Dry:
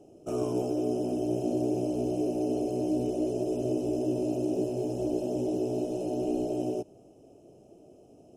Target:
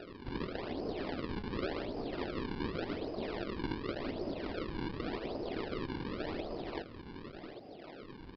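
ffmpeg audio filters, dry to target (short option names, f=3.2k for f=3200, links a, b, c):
-filter_complex "[0:a]highpass=f=370:p=1,aeval=exprs='0.0944*(cos(1*acos(clip(val(0)/0.0944,-1,1)))-cos(1*PI/2))+0.015*(cos(4*acos(clip(val(0)/0.0944,-1,1)))-cos(4*PI/2))':c=same,acompressor=threshold=-49dB:ratio=2,asplit=2[a][b];[b]aecho=0:1:768:0.335[c];[a][c]amix=inputs=2:normalize=0,afftfilt=real='hypot(re,im)*cos(2*PI*random(0))':imag='hypot(re,im)*sin(2*PI*random(1))':win_size=512:overlap=0.75,acrusher=samples=39:mix=1:aa=0.000001:lfo=1:lforange=62.4:lforate=0.88,acompressor=mode=upward:threshold=-53dB:ratio=2.5,aresample=11025,aresample=44100,volume=10.5dB"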